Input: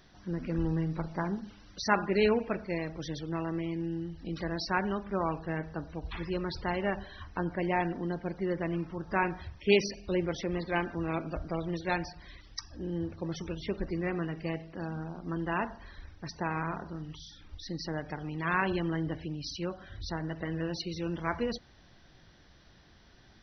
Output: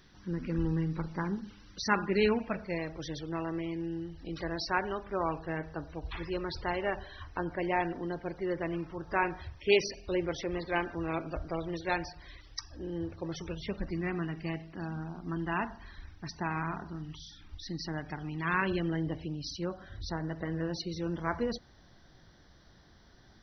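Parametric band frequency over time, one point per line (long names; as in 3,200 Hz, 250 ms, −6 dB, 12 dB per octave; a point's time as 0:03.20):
parametric band −10 dB 0.44 octaves
0:02.24 670 Hz
0:02.86 200 Hz
0:13.34 200 Hz
0:14.01 520 Hz
0:18.39 520 Hz
0:19.51 2,600 Hz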